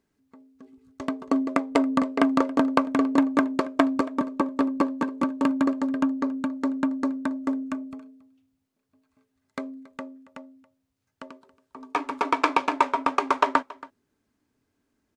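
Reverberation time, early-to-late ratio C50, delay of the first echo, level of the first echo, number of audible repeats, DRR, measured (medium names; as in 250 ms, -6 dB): no reverb, no reverb, 277 ms, -20.5 dB, 1, no reverb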